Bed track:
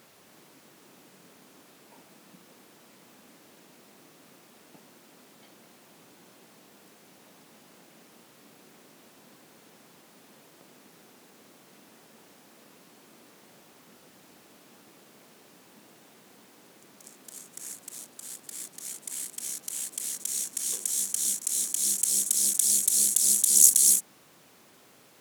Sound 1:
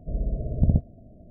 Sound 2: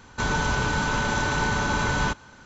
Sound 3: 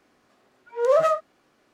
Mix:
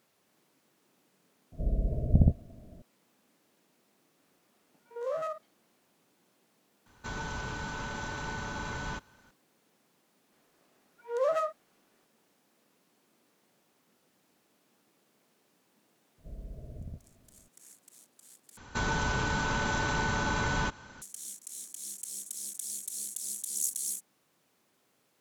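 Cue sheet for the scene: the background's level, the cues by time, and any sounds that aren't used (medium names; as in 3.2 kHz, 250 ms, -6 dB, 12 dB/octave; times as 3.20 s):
bed track -15 dB
1.52 s: add 1 -2 dB
4.18 s: add 3 -13.5 dB + spectrogram pixelated in time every 50 ms
6.86 s: add 2 -13 dB
10.32 s: add 3 -9 dB + peaking EQ 170 Hz -12 dB
16.18 s: add 1 -15 dB + peak limiter -19 dBFS
18.57 s: replace with 2 -2 dB + compression 1.5:1, threshold -30 dBFS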